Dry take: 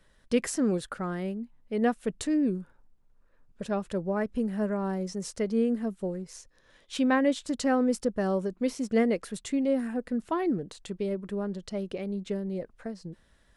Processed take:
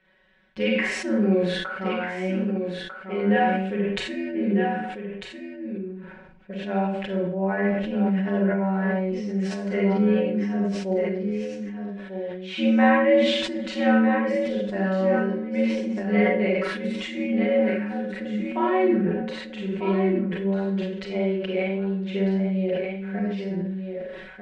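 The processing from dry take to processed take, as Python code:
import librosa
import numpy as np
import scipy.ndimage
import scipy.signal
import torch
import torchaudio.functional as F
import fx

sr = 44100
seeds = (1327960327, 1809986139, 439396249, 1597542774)

p1 = fx.lowpass_res(x, sr, hz=2400.0, q=2.1)
p2 = fx.rider(p1, sr, range_db=3, speed_s=2.0)
p3 = scipy.signal.sosfilt(scipy.signal.butter(2, 45.0, 'highpass', fs=sr, output='sos'), p2)
p4 = fx.low_shelf(p3, sr, hz=130.0, db=-7.5)
p5 = fx.notch(p4, sr, hz=1200.0, q=6.1)
p6 = p5 + fx.echo_single(p5, sr, ms=693, db=-7.5, dry=0)
p7 = fx.stretch_grains(p6, sr, factor=1.8, grain_ms=24.0)
p8 = fx.rev_schroeder(p7, sr, rt60_s=0.46, comb_ms=31, drr_db=-3.0)
y = fx.sustainer(p8, sr, db_per_s=40.0)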